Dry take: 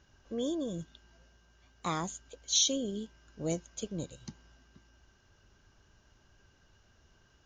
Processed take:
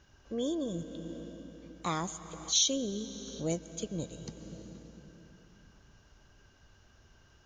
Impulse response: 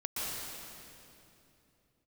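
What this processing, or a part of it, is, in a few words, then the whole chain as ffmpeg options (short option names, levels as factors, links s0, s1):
ducked reverb: -filter_complex "[0:a]asplit=3[s0][s1][s2];[1:a]atrim=start_sample=2205[s3];[s1][s3]afir=irnorm=-1:irlink=0[s4];[s2]apad=whole_len=328983[s5];[s4][s5]sidechaincompress=threshold=0.00891:ratio=10:attack=6.9:release=533,volume=0.376[s6];[s0][s6]amix=inputs=2:normalize=0"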